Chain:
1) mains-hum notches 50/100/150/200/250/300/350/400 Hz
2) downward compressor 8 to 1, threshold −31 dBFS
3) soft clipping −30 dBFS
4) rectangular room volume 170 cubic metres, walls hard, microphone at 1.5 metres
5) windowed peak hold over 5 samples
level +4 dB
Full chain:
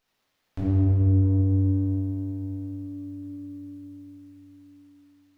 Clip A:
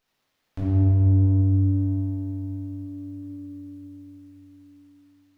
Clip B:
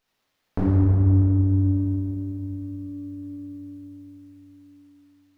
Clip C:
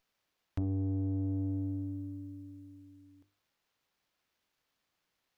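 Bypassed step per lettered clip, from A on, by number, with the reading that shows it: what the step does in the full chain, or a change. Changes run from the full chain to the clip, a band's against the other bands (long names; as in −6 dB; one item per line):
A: 1, change in integrated loudness +2.0 LU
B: 3, distortion level −15 dB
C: 4, change in momentary loudness spread −2 LU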